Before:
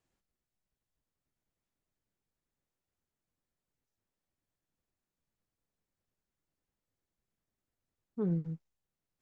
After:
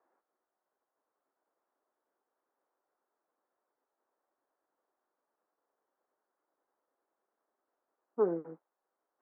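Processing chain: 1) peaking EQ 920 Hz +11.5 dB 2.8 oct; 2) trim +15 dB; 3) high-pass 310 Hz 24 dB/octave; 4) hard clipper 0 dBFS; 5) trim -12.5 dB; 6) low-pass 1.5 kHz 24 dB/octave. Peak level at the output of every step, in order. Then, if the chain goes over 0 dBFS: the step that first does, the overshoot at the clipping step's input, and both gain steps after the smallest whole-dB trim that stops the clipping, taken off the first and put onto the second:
-17.0 dBFS, -2.0 dBFS, -5.0 dBFS, -5.0 dBFS, -17.5 dBFS, -17.5 dBFS; nothing clips

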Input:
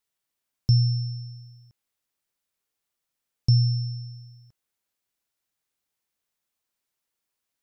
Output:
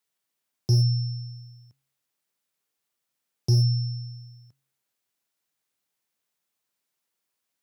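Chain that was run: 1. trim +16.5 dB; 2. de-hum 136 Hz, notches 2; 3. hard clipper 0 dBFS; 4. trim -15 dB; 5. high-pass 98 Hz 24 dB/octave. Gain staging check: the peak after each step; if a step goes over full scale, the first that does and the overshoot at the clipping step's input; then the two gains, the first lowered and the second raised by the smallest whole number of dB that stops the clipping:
+6.0 dBFS, +6.0 dBFS, 0.0 dBFS, -15.0 dBFS, -13.5 dBFS; step 1, 6.0 dB; step 1 +10.5 dB, step 4 -9 dB

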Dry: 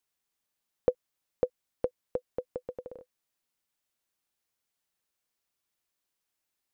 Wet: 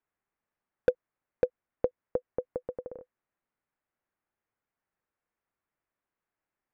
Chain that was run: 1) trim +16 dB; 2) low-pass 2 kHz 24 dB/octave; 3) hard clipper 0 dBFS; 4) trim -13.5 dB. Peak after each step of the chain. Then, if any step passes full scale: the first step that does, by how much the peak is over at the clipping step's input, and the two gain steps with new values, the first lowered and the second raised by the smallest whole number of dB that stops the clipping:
+5.5 dBFS, +5.5 dBFS, 0.0 dBFS, -13.5 dBFS; step 1, 5.5 dB; step 1 +10 dB, step 4 -7.5 dB

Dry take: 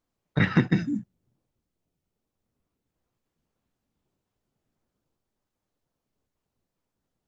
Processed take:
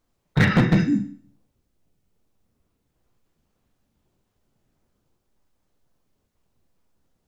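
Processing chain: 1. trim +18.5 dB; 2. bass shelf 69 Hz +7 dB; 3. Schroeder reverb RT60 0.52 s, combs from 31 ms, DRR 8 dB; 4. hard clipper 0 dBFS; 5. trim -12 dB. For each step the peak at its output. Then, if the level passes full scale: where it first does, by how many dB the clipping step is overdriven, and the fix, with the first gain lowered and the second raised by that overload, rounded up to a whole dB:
+10.0 dBFS, +10.0 dBFS, +10.0 dBFS, 0.0 dBFS, -12.0 dBFS; step 1, 10.0 dB; step 1 +8.5 dB, step 5 -2 dB

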